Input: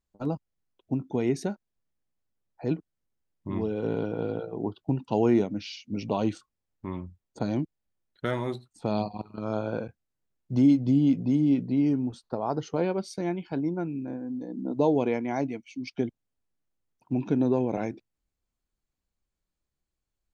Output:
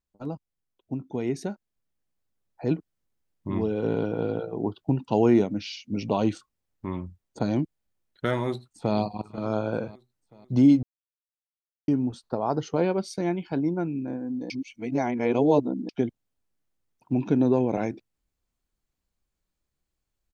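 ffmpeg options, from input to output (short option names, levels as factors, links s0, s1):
-filter_complex "[0:a]asplit=2[s0][s1];[s1]afade=t=in:st=8.35:d=0.01,afade=t=out:st=8.97:d=0.01,aecho=0:1:490|980|1470|1960|2450:0.16788|0.0839402|0.0419701|0.0209851|0.0104925[s2];[s0][s2]amix=inputs=2:normalize=0,asplit=5[s3][s4][s5][s6][s7];[s3]atrim=end=10.83,asetpts=PTS-STARTPTS,afade=t=out:st=10.826:d=0.004:c=hsin[s8];[s4]atrim=start=10.83:end=11.88,asetpts=PTS-STARTPTS,volume=0[s9];[s5]atrim=start=11.88:end=14.502,asetpts=PTS-STARTPTS,afade=t=in:d=0.004:c=hsin[s10];[s6]atrim=start=14.498:end=15.892,asetpts=PTS-STARTPTS,areverse[s11];[s7]atrim=start=15.888[s12];[s8][s9][s10]concat=n=3:v=0:a=1[s13];[s13][s11]acrossfade=d=0.004:c1=hsin:c2=hsin[s14];[s14][s12]acrossfade=d=0.004:c1=hsin:c2=hsin,dynaudnorm=f=210:g=17:m=2.24,volume=0.631"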